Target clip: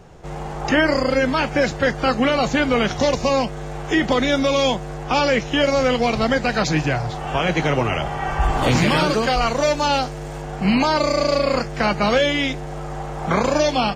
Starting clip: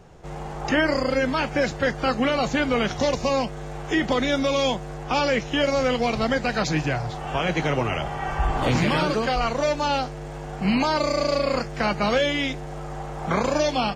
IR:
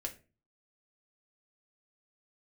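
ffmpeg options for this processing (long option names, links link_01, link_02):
-filter_complex "[0:a]asettb=1/sr,asplit=3[link_01][link_02][link_03];[link_01]atrim=end=8.414[link_04];[link_02]atrim=start=8.41:end=10.42,asetpts=PTS-STARTPTS,afade=type=in:duration=0.004:curve=qsin,afade=type=out:start_time=2.006:duration=0.004:curve=qsin,highshelf=frequency=5600:gain=6.5[link_05];[link_03]atrim=start=10.416[link_06];[link_04][link_05]acrossfade=duration=0.004:curve1=hsin:curve2=qsin[link_07];[link_07][link_06]acrossfade=duration=0.004:curve1=qsin:curve2=hsin,volume=4dB"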